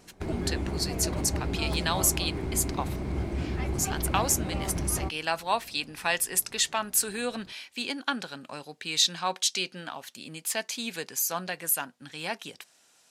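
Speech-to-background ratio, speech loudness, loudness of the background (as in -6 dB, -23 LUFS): 4.0 dB, -29.0 LUFS, -33.0 LUFS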